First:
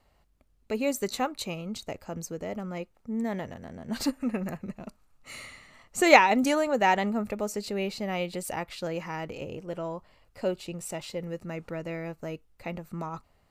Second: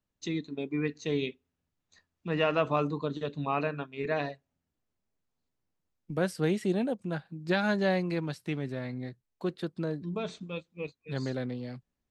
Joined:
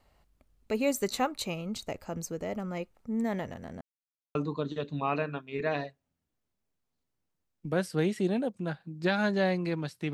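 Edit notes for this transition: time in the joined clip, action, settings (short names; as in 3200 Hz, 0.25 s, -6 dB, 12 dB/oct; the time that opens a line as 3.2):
first
3.81–4.35 mute
4.35 switch to second from 2.8 s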